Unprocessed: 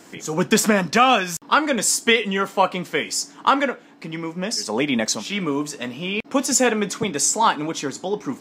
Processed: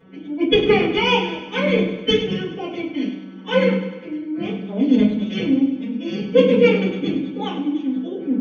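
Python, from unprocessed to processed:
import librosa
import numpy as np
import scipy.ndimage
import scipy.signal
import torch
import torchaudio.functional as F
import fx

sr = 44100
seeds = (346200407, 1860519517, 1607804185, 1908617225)

p1 = fx.formant_cascade(x, sr, vowel='i')
p2 = fx.dmg_buzz(p1, sr, base_hz=100.0, harmonics=19, level_db=-62.0, tilt_db=-5, odd_only=False)
p3 = fx.pitch_keep_formants(p2, sr, semitones=11.0)
p4 = scipy.signal.sosfilt(scipy.signal.butter(2, 78.0, 'highpass', fs=sr, output='sos'), p3)
p5 = p4 + fx.echo_feedback(p4, sr, ms=100, feedback_pct=56, wet_db=-11, dry=0)
y = fx.room_shoebox(p5, sr, seeds[0], volume_m3=130.0, walls='furnished', distance_m=4.9)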